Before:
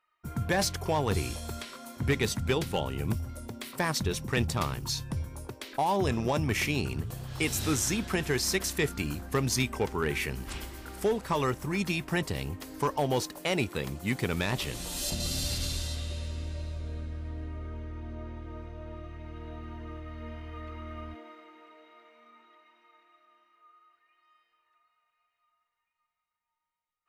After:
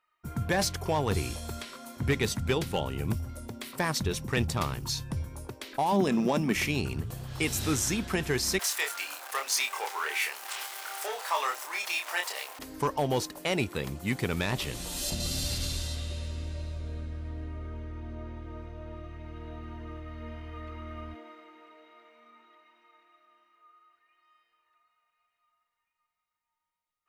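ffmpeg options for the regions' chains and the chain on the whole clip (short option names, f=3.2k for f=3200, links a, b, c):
-filter_complex "[0:a]asettb=1/sr,asplit=3[a][b][c];[a]atrim=end=5.924[d];[b]atrim=start=5.92:end=6.55,asetpts=PTS-STARTPTS,afade=t=in:d=0.004:c=qsin,afade=t=out:st=0.626:d=0.004:c=qsin,aeval=exprs='val(0)*gte(abs(val(0)),0.00299)':c=same,lowshelf=f=130:t=q:w=3:g=-14[e];[c]atrim=start=6.546[f];[d][e]acrossfade=d=0.004:c1=hsin:c2=qsin[g];[g][f]acrossfade=d=0.004:c1=qsin:c2=hsin,asettb=1/sr,asplit=3[h][i][j];[h]atrim=end=8.594[k];[i]atrim=start=8.59:end=12.59,asetpts=PTS-STARTPTS,afade=t=in:d=0.004:c=qsin,afade=t=out:st=3.996:d=0.004:c=qsin,aeval=exprs='val(0)+0.5*0.0178*sgn(val(0))':c=same,highpass=f=660:w=0.5412,highpass=f=660:w=1.3066,asplit=2[l][m];[m]adelay=28,volume=-4dB[n];[l][n]amix=inputs=2:normalize=0,atrim=end_sample=176400[o];[j]atrim=start=12.586[p];[k][o]acrossfade=d=0.004:c1=hsin:c2=qsin[q];[q][p]acrossfade=d=0.004:c1=qsin:c2=hsin"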